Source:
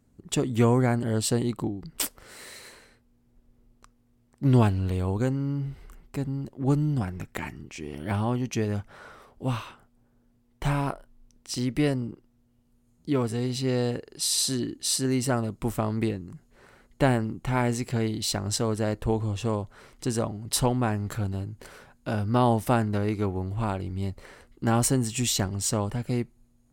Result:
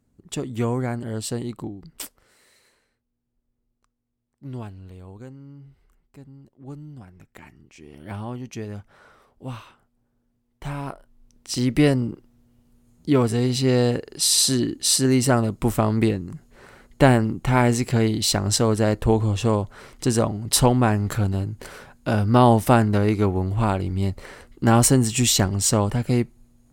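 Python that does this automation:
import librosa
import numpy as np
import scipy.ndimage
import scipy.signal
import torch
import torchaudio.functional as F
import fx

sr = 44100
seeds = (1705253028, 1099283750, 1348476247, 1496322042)

y = fx.gain(x, sr, db=fx.line((1.88, -3.0), (2.41, -14.5), (7.03, -14.5), (8.12, -5.5), (10.66, -5.5), (11.72, 7.0)))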